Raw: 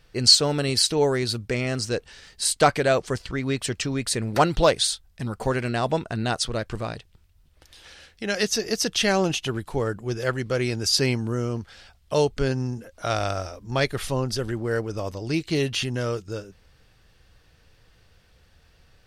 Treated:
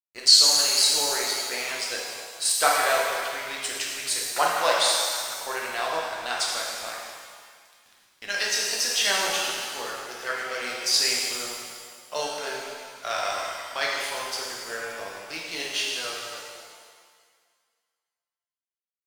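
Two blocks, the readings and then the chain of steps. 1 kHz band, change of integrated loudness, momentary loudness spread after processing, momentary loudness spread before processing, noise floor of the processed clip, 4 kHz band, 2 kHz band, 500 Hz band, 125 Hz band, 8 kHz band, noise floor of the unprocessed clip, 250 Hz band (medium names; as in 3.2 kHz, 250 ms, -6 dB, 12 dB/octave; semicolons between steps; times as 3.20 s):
+0.5 dB, +0.5 dB, 16 LU, 11 LU, under -85 dBFS, +2.5 dB, +2.5 dB, -7.0 dB, -28.5 dB, +4.0 dB, -59 dBFS, -18.0 dB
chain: high-pass 840 Hz 12 dB/octave; crossover distortion -43 dBFS; pitch-shifted reverb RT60 1.8 s, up +7 st, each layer -8 dB, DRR -3.5 dB; trim -2 dB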